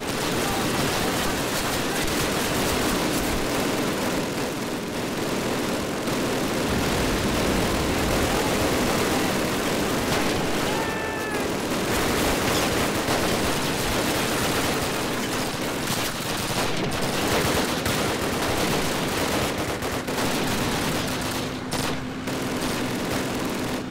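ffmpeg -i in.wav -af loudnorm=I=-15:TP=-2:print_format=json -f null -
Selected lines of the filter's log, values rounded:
"input_i" : "-24.4",
"input_tp" : "-13.6",
"input_lra" : "4.0",
"input_thresh" : "-34.4",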